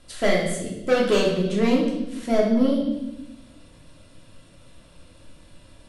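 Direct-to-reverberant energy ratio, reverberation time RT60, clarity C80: -4.0 dB, 0.95 s, 6.5 dB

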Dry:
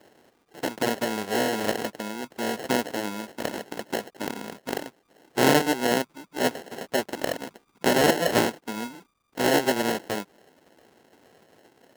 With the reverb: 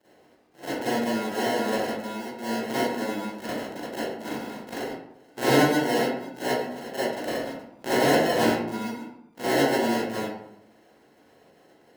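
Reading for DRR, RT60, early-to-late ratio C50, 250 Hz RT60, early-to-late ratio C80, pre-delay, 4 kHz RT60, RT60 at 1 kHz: -12.5 dB, 0.80 s, -4.5 dB, 0.85 s, 2.0 dB, 35 ms, 0.45 s, 0.75 s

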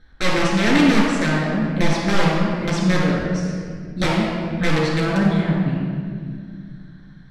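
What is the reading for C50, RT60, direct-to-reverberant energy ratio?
-1.5 dB, 2.1 s, -5.0 dB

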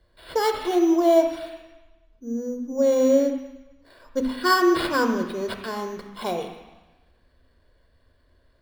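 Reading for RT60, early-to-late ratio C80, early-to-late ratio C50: 1.1 s, 9.0 dB, 7.0 dB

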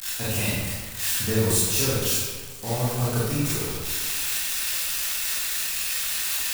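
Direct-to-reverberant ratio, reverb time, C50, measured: -10.0 dB, 1.5 s, -3.0 dB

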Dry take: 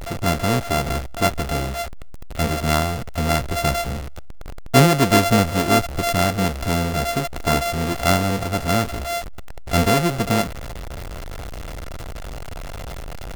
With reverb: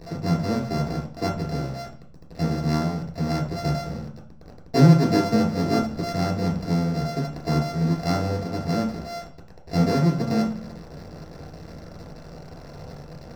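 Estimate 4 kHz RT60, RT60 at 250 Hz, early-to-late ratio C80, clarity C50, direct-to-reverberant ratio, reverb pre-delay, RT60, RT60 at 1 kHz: 0.40 s, 0.80 s, 12.0 dB, 7.5 dB, -0.5 dB, 3 ms, 0.45 s, 0.40 s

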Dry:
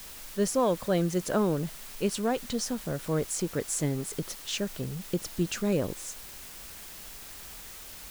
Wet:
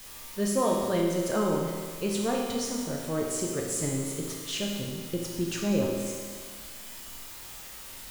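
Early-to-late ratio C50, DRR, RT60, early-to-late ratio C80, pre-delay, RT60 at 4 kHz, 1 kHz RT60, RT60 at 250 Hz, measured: 1.5 dB, -2.0 dB, 1.7 s, 3.0 dB, 8 ms, 1.7 s, 1.7 s, 1.7 s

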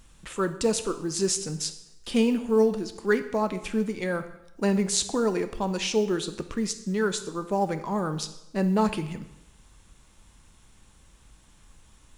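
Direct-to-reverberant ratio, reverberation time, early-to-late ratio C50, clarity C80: 9.5 dB, 0.90 s, 12.5 dB, 15.0 dB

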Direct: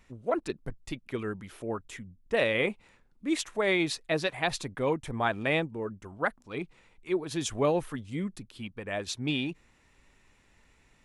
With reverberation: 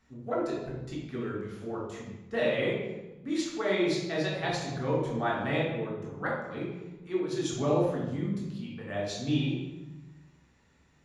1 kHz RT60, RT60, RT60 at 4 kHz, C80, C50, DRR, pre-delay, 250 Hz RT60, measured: 1.0 s, 1.1 s, 0.80 s, 4.0 dB, 1.0 dB, -4.5 dB, 3 ms, 1.7 s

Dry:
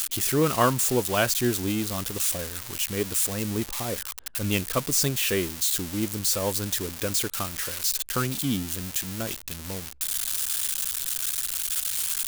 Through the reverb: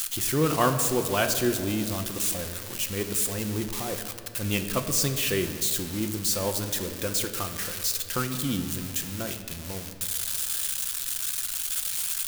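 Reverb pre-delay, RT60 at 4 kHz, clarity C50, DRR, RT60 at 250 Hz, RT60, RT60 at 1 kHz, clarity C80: 6 ms, 1.3 s, 9.0 dB, 6.0 dB, 2.7 s, 2.6 s, 2.1 s, 10.0 dB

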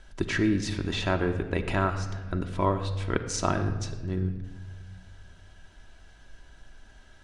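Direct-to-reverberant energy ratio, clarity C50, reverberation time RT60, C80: 4.5 dB, 10.0 dB, 1.4 s, 11.0 dB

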